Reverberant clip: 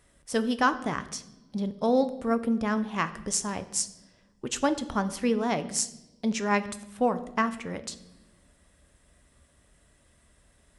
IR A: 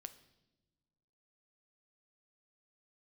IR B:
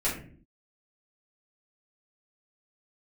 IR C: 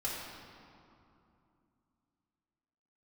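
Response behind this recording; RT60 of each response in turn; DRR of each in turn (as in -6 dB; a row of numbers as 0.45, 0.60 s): A; not exponential, 0.50 s, 2.7 s; 10.5, -9.0, -6.5 dB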